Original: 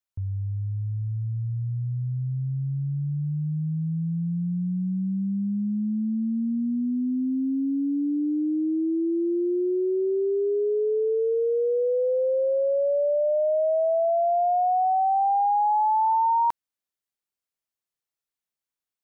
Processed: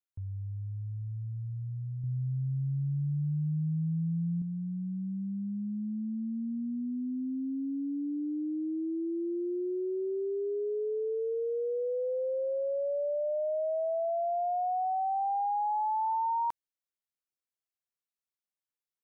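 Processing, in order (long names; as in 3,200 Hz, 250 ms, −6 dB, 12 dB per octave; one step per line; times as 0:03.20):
0:02.03–0:04.42: comb filter 6.7 ms, depth 83%
level −8.5 dB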